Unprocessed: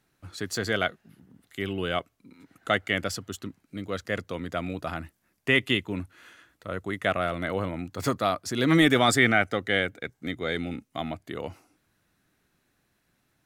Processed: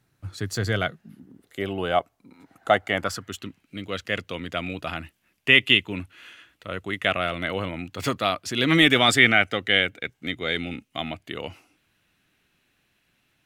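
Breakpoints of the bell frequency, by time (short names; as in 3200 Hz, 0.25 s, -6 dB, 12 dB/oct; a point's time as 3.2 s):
bell +11.5 dB 0.85 oct
0.78 s 110 Hz
1.76 s 770 Hz
2.95 s 770 Hz
3.4 s 2800 Hz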